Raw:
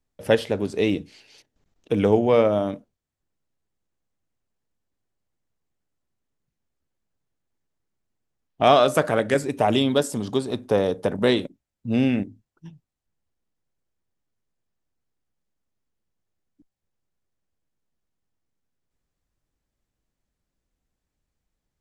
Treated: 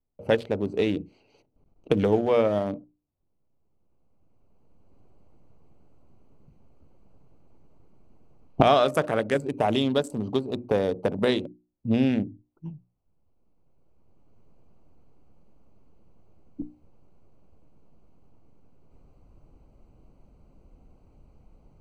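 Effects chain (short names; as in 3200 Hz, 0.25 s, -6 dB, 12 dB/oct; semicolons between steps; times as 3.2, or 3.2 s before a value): Wiener smoothing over 25 samples; recorder AGC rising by 12 dB/s; notches 60/120/180/240/300/360 Hz; gain -3.5 dB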